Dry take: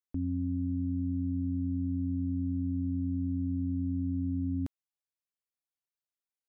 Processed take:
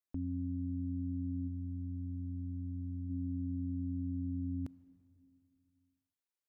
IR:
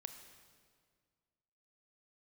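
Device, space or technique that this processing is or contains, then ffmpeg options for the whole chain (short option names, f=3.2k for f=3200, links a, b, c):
ducked reverb: -filter_complex "[0:a]asplit=3[a][b][c];[1:a]atrim=start_sample=2205[d];[b][d]afir=irnorm=-1:irlink=0[e];[c]apad=whole_len=285777[f];[e][f]sidechaincompress=threshold=-37dB:ratio=8:attack=8.5:release=1420,volume=3dB[g];[a][g]amix=inputs=2:normalize=0,asplit=3[h][i][j];[h]afade=t=out:st=1.47:d=0.02[k];[i]equalizer=f=320:w=1:g=-7,afade=t=in:st=1.47:d=0.02,afade=t=out:st=3.09:d=0.02[l];[j]afade=t=in:st=3.09:d=0.02[m];[k][l][m]amix=inputs=3:normalize=0,volume=-7.5dB"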